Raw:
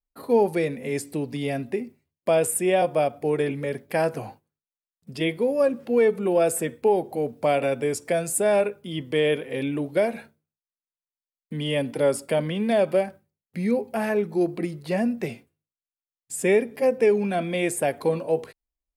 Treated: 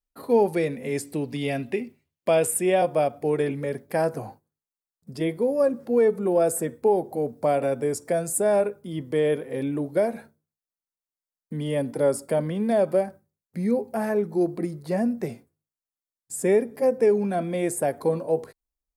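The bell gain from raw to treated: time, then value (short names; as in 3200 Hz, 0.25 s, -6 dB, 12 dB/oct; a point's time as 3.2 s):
bell 2800 Hz 1 oct
1.1 s -2 dB
1.77 s +6.5 dB
2.9 s -4 dB
3.45 s -4 dB
4.23 s -12.5 dB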